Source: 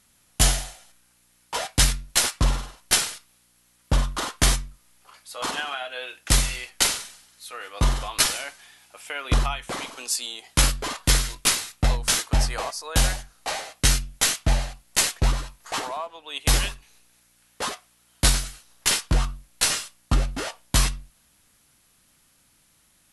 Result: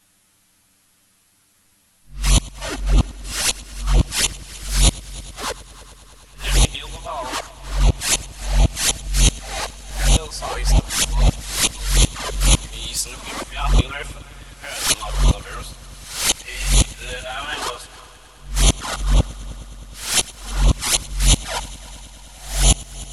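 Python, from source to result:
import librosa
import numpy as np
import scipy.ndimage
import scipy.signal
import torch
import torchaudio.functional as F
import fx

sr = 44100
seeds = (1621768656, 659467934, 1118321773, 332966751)

y = np.flip(x).copy()
y = fx.env_flanger(y, sr, rest_ms=10.6, full_db=-17.5)
y = fx.echo_heads(y, sr, ms=104, heads='first and third', feedback_pct=72, wet_db=-21.0)
y = y * 10.0 ** (5.5 / 20.0)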